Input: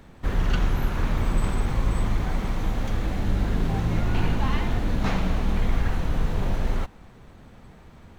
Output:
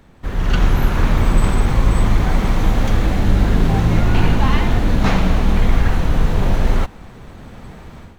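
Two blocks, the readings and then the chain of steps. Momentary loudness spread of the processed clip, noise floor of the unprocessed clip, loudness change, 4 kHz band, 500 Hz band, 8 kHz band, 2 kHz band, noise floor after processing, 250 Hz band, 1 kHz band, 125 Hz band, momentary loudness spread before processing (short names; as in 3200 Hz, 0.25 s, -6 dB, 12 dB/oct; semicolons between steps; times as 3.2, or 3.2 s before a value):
5 LU, -49 dBFS, +9.0 dB, +9.0 dB, +9.0 dB, +9.0 dB, +9.0 dB, -40 dBFS, +9.0 dB, +9.0 dB, +9.0 dB, 3 LU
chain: AGC gain up to 12 dB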